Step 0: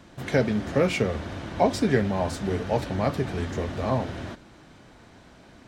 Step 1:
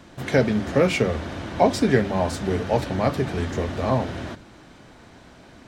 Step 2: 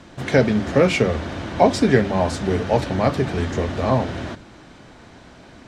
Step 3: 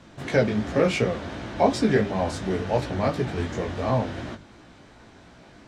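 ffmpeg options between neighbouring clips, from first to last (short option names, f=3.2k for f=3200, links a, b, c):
-af "bandreject=f=50:t=h:w=6,bandreject=f=100:t=h:w=6,bandreject=f=150:t=h:w=6,bandreject=f=200:t=h:w=6,volume=3.5dB"
-af "lowpass=9.4k,volume=3dB"
-af "flanger=delay=16.5:depth=4.1:speed=2.8,volume=-2dB"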